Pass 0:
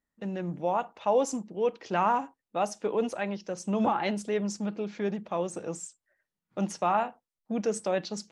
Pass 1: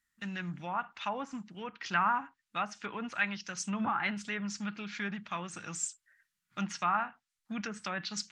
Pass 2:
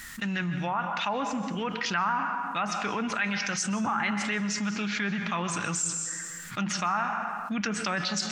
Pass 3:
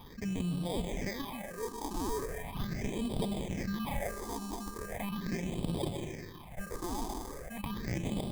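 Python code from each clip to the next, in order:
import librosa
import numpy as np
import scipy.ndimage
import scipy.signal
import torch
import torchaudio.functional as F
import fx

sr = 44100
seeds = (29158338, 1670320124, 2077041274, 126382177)

y1 = fx.peak_eq(x, sr, hz=7100.0, db=2.0, octaves=0.24)
y1 = fx.env_lowpass_down(y1, sr, base_hz=1300.0, full_db=-23.0)
y1 = fx.curve_eq(y1, sr, hz=(140.0, 260.0, 490.0, 920.0, 1400.0), db=(0, -6, -18, -3, 10))
y1 = F.gain(torch.from_numpy(y1), -2.0).numpy()
y2 = fx.rev_plate(y1, sr, seeds[0], rt60_s=0.91, hf_ratio=0.8, predelay_ms=115, drr_db=11.0)
y2 = fx.env_flatten(y2, sr, amount_pct=70)
y3 = fx.sample_hold(y2, sr, seeds[1], rate_hz=1400.0, jitter_pct=0)
y3 = fx.phaser_stages(y3, sr, stages=6, low_hz=140.0, high_hz=1800.0, hz=0.39, feedback_pct=35)
y3 = F.gain(torch.from_numpy(y3), -4.5).numpy()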